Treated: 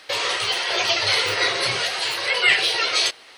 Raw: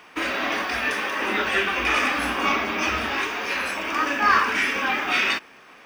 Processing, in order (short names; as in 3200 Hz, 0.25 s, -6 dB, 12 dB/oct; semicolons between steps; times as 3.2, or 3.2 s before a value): speed mistake 45 rpm record played at 78 rpm; spectral gate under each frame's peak -30 dB strong; gain +2 dB